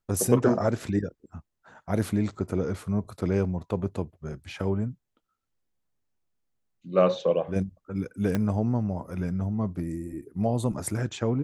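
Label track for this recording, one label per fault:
8.350000	8.350000	pop -14 dBFS

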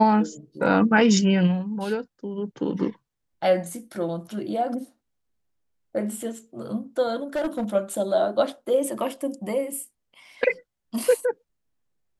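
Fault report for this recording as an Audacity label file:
7.350000	7.640000	clipped -22 dBFS

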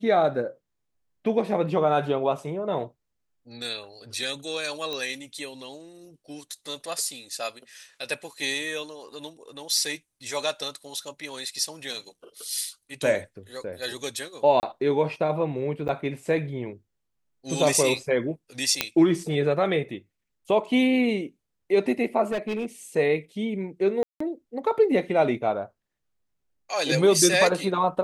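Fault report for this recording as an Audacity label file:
4.930000	4.930000	pop -17 dBFS
14.600000	14.630000	dropout 29 ms
15.880000	15.890000	dropout 9.5 ms
18.810000	18.810000	pop -4 dBFS
22.310000	22.660000	clipped -23.5 dBFS
24.030000	24.200000	dropout 174 ms

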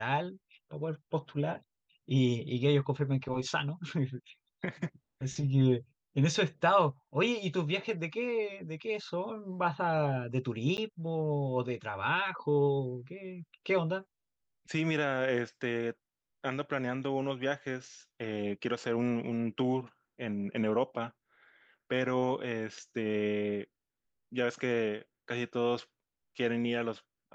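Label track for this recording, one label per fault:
10.770000	10.780000	dropout 9.9 ms

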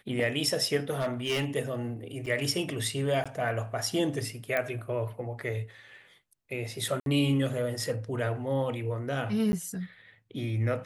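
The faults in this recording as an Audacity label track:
0.930000	1.450000	clipped -25 dBFS
2.260000	2.270000	dropout 5.7 ms
3.240000	3.260000	dropout 16 ms
4.570000	4.570000	pop -15 dBFS
7.000000	7.060000	dropout 62 ms
9.520000	9.530000	dropout 10 ms

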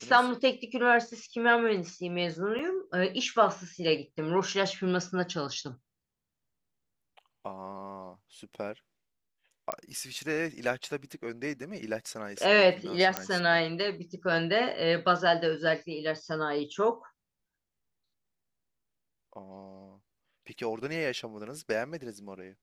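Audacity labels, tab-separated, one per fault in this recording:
2.590000	2.590000	dropout 4.4 ms
9.720000	9.720000	pop -15 dBFS
13.170000	13.170000	pop -11 dBFS

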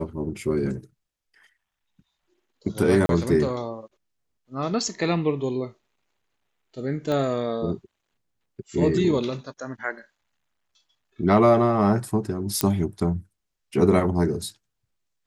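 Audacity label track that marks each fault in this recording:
3.060000	3.090000	dropout 32 ms
7.120000	7.120000	pop -16 dBFS
12.610000	12.610000	pop -4 dBFS

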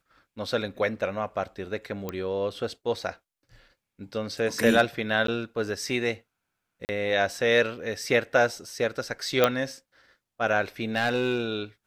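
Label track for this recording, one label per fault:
2.090000	2.090000	pop -17 dBFS
5.270000	5.280000	dropout 13 ms
6.850000	6.890000	dropout 39 ms
9.440000	9.440000	pop -6 dBFS
10.960000	11.520000	clipped -19 dBFS

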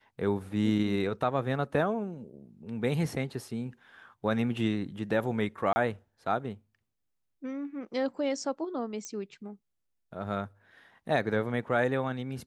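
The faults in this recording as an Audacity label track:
5.730000	5.760000	dropout 30 ms
9.050000	9.050000	pop -24 dBFS

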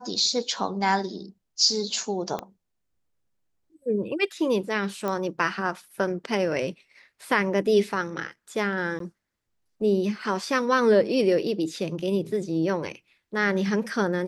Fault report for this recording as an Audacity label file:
2.390000	2.390000	pop -17 dBFS
5.080000	5.080000	pop -16 dBFS
8.990000	9.000000	dropout

